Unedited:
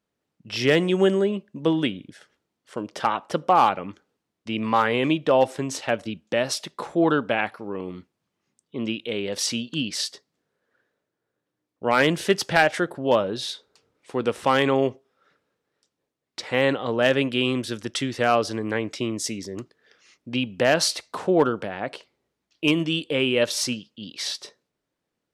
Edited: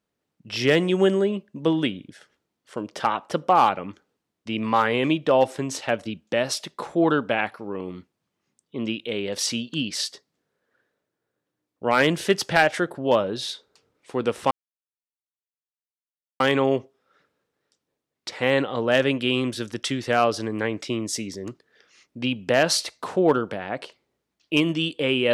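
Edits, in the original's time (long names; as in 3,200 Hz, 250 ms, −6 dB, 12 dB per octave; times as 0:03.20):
0:14.51: splice in silence 1.89 s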